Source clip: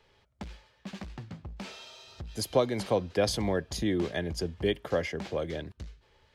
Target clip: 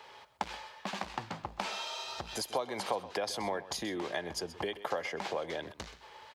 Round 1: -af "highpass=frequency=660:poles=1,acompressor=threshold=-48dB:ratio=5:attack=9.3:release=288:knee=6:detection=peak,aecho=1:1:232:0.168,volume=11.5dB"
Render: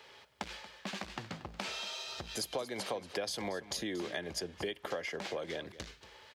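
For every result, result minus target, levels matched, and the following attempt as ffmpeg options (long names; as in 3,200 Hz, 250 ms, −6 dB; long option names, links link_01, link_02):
echo 104 ms late; 1,000 Hz band −5.0 dB
-af "highpass=frequency=660:poles=1,acompressor=threshold=-48dB:ratio=5:attack=9.3:release=288:knee=6:detection=peak,aecho=1:1:128:0.168,volume=11.5dB"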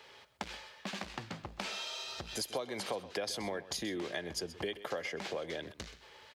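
1,000 Hz band −5.0 dB
-af "highpass=frequency=660:poles=1,acompressor=threshold=-48dB:ratio=5:attack=9.3:release=288:knee=6:detection=peak,equalizer=frequency=900:width=1.5:gain=9,aecho=1:1:128:0.168,volume=11.5dB"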